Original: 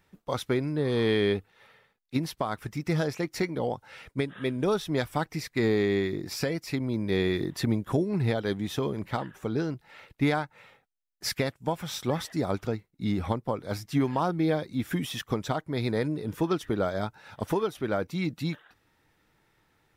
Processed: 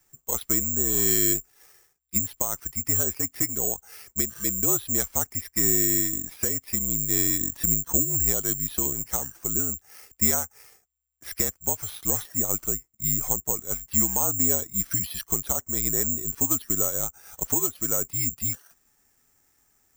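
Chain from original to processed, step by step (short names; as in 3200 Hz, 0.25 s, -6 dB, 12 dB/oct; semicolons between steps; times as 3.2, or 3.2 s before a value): frequency shift -61 Hz; careless resampling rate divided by 6×, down filtered, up zero stuff; gain -5 dB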